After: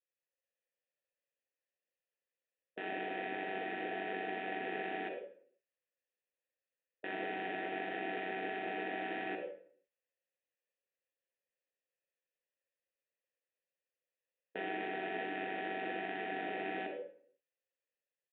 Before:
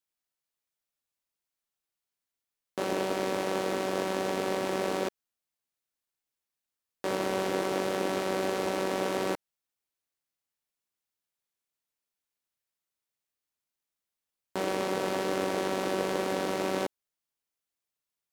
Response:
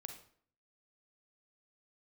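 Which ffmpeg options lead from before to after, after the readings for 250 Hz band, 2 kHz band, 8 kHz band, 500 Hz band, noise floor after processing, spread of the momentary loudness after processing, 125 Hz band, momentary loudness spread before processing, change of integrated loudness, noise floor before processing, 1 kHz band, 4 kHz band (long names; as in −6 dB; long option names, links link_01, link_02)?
−10.5 dB, −2.5 dB, below −35 dB, −12.0 dB, below −85 dBFS, 7 LU, −15.5 dB, 4 LU, −9.0 dB, below −85 dBFS, −6.5 dB, −11.5 dB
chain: -filter_complex "[0:a]aresample=8000,aresample=44100,acrossover=split=2800[link_01][link_02];[link_01]dynaudnorm=framelen=130:gausssize=5:maxgain=4dB[link_03];[link_03][link_02]amix=inputs=2:normalize=0,asplit=3[link_04][link_05][link_06];[link_04]bandpass=frequency=530:width_type=q:width=8,volume=0dB[link_07];[link_05]bandpass=frequency=1840:width_type=q:width=8,volume=-6dB[link_08];[link_06]bandpass=frequency=2480:width_type=q:width=8,volume=-9dB[link_09];[link_07][link_08][link_09]amix=inputs=3:normalize=0[link_10];[1:a]atrim=start_sample=2205[link_11];[link_10][link_11]afir=irnorm=-1:irlink=0,afftfilt=real='re*lt(hypot(re,im),0.0316)':imag='im*lt(hypot(re,im),0.0316)':win_size=1024:overlap=0.75,volume=10.5dB"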